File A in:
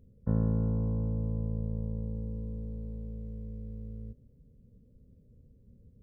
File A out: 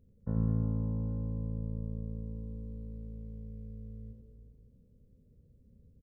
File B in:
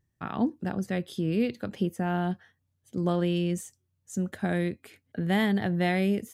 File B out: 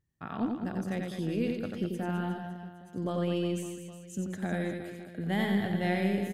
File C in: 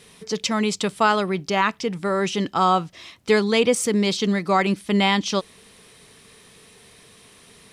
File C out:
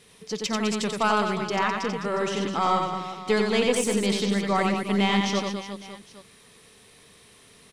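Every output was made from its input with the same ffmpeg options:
-af "aeval=exprs='0.447*(cos(1*acos(clip(val(0)/0.447,-1,1)))-cos(1*PI/2))+0.0562*(cos(2*acos(clip(val(0)/0.447,-1,1)))-cos(2*PI/2))':c=same,aecho=1:1:90|207|359.1|556.8|813.9:0.631|0.398|0.251|0.158|0.1,volume=-5.5dB"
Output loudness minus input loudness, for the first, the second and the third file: -2.5, -4.0, -3.5 LU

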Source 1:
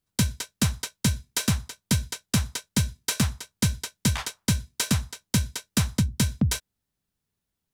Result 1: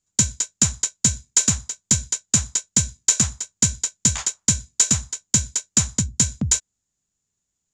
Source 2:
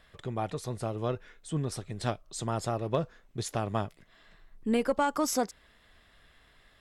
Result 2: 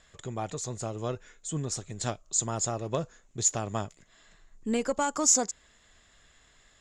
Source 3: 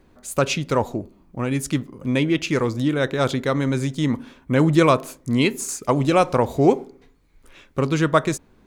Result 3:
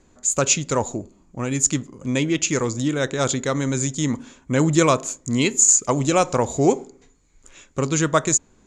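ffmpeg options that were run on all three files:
-af "lowpass=f=7k:t=q:w=13,volume=-1.5dB"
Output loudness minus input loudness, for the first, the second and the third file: +7.0, +3.0, +1.0 LU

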